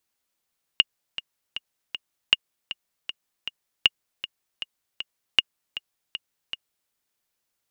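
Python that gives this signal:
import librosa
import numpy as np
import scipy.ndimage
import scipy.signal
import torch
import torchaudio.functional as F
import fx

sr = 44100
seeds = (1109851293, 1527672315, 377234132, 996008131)

y = fx.click_track(sr, bpm=157, beats=4, bars=4, hz=2850.0, accent_db=14.5, level_db=-2.5)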